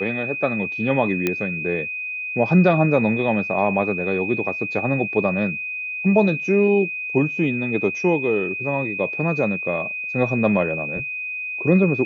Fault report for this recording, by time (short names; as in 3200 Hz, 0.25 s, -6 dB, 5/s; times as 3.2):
tone 2500 Hz -26 dBFS
1.27 pop -7 dBFS